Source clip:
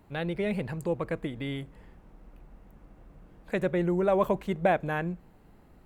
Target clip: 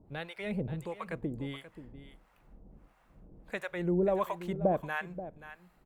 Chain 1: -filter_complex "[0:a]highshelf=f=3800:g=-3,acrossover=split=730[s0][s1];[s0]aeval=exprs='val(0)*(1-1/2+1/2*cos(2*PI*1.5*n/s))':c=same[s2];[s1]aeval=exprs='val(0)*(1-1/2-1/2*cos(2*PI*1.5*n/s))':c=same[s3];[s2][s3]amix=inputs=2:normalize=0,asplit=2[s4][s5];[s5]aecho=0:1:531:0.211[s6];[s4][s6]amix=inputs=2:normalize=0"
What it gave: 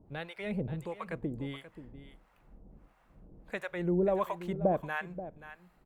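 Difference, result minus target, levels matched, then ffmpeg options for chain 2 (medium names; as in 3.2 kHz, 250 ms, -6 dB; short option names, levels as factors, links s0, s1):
8 kHz band -2.5 dB
-filter_complex "[0:a]acrossover=split=730[s0][s1];[s0]aeval=exprs='val(0)*(1-1/2+1/2*cos(2*PI*1.5*n/s))':c=same[s2];[s1]aeval=exprs='val(0)*(1-1/2-1/2*cos(2*PI*1.5*n/s))':c=same[s3];[s2][s3]amix=inputs=2:normalize=0,asplit=2[s4][s5];[s5]aecho=0:1:531:0.211[s6];[s4][s6]amix=inputs=2:normalize=0"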